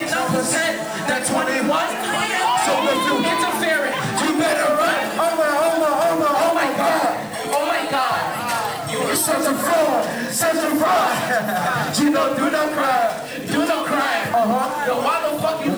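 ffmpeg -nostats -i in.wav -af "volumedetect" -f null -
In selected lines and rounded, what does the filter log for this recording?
mean_volume: -19.4 dB
max_volume: -9.3 dB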